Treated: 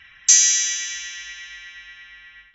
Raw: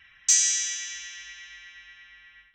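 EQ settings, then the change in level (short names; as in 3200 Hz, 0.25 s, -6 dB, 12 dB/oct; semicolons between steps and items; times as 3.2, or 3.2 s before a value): brick-wall FIR low-pass 7500 Hz; +7.0 dB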